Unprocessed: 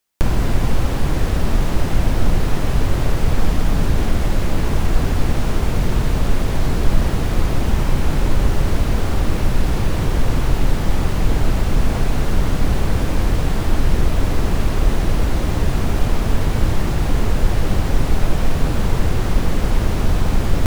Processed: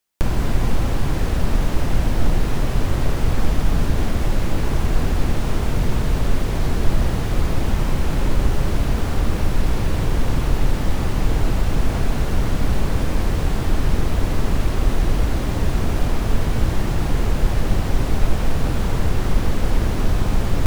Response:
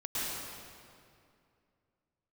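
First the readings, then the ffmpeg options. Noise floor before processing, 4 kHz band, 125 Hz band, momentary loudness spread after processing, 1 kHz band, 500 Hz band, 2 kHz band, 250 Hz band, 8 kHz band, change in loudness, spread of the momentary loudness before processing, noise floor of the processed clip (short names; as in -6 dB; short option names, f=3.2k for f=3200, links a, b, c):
-21 dBFS, -2.0 dB, -2.0 dB, 1 LU, -2.0 dB, -2.0 dB, -2.0 dB, -2.0 dB, -2.0 dB, -2.0 dB, 1 LU, -22 dBFS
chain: -filter_complex "[0:a]asplit=2[a][b];[1:a]atrim=start_sample=2205,adelay=28[c];[b][c]afir=irnorm=-1:irlink=0,volume=-15.5dB[d];[a][d]amix=inputs=2:normalize=0,volume=-2.5dB"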